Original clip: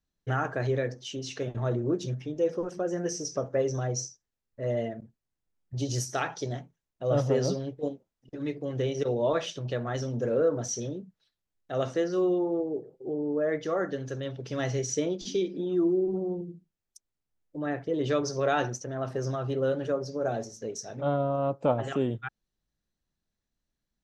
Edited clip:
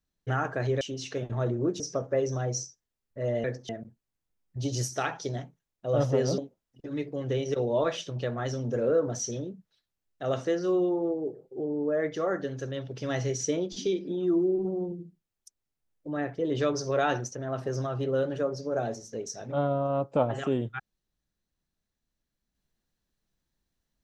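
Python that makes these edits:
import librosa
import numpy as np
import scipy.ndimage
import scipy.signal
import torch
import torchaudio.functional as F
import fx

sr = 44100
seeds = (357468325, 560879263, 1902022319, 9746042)

y = fx.edit(x, sr, fx.move(start_s=0.81, length_s=0.25, to_s=4.86),
    fx.cut(start_s=2.05, length_s=1.17),
    fx.cut(start_s=7.55, length_s=0.32), tone=tone)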